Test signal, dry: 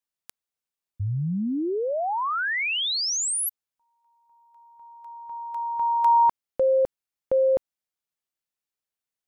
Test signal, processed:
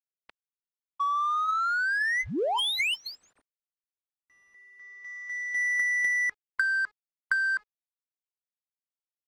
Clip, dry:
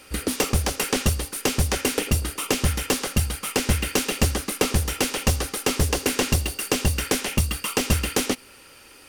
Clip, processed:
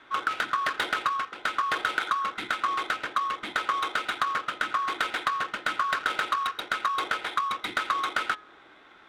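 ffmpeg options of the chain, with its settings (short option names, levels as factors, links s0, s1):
-af "afftfilt=real='real(if(lt(b,960),b+48*(1-2*mod(floor(b/48),2)),b),0)':imag='imag(if(lt(b,960),b+48*(1-2*mod(floor(b/48),2)),b),0)':win_size=2048:overlap=0.75,lowpass=f=3000:w=0.5412,lowpass=f=3000:w=1.3066,aemphasis=mode=production:type=riaa,bandreject=f=420.8:t=h:w=4,bandreject=f=841.6:t=h:w=4,bandreject=f=1262.4:t=h:w=4,bandreject=f=1683.2:t=h:w=4,adynamicequalizer=threshold=0.00794:dfrequency=410:dqfactor=0.97:tfrequency=410:tqfactor=0.97:attack=5:release=100:ratio=0.417:range=2:mode=boostabove:tftype=bell,alimiter=limit=0.282:level=0:latency=1:release=410,acompressor=threshold=0.0398:ratio=16:attack=99:release=40:knee=1:detection=rms,acrusher=bits=8:mix=0:aa=0.000001,adynamicsmooth=sensitivity=5:basefreq=2200"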